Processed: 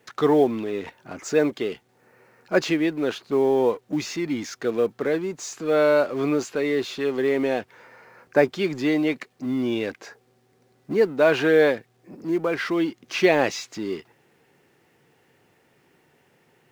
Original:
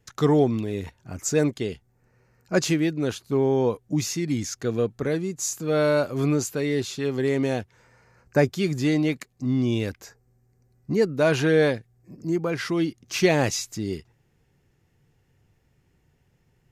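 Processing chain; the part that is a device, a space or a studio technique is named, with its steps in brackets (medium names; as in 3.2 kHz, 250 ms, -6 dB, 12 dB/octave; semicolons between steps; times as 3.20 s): phone line with mismatched companding (band-pass 310–3300 Hz; companding laws mixed up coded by mu); trim +3 dB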